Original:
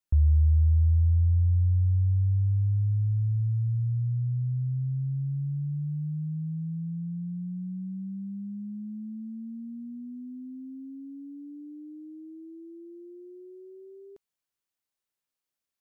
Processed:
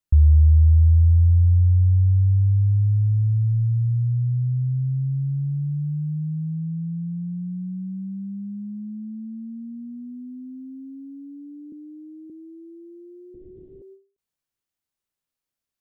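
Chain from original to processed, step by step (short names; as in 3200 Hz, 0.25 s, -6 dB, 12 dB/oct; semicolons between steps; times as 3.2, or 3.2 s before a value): 11.72–12.3 steep high-pass 160 Hz; 13.34–13.82 LPC vocoder at 8 kHz whisper; low shelf 220 Hz +8 dB; ending taper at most 170 dB/s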